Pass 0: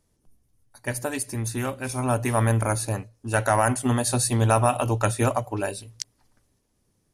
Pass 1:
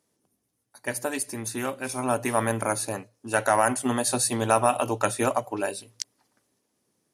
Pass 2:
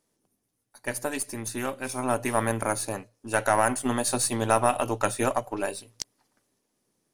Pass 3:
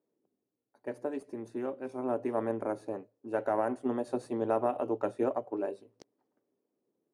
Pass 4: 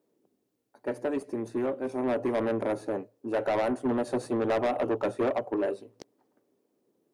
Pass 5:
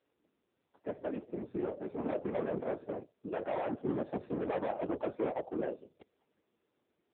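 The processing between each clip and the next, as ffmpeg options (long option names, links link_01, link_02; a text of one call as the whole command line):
ffmpeg -i in.wav -af "highpass=220" out.wav
ffmpeg -i in.wav -af "aeval=exprs='if(lt(val(0),0),0.708*val(0),val(0))':channel_layout=same" out.wav
ffmpeg -i in.wav -af "bandpass=frequency=390:width_type=q:width=1.6:csg=0" out.wav
ffmpeg -i in.wav -af "asoftclip=type=tanh:threshold=-30.5dB,volume=8.5dB" out.wav
ffmpeg -i in.wav -af "afftfilt=real='hypot(re,im)*cos(2*PI*random(0))':imag='hypot(re,im)*sin(2*PI*random(1))':win_size=512:overlap=0.75" -ar 8000 -c:a libopencore_amrnb -b:a 6700 out.amr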